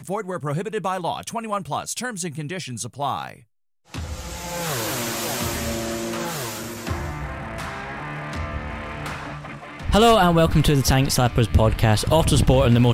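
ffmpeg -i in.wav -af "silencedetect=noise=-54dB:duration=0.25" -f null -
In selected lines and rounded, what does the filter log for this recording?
silence_start: 3.44
silence_end: 3.85 | silence_duration: 0.41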